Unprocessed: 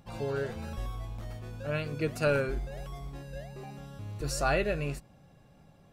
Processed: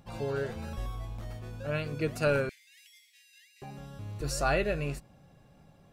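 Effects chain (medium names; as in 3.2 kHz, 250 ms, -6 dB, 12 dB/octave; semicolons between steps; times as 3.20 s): 2.49–3.62 s: Chebyshev high-pass 1.9 kHz, order 6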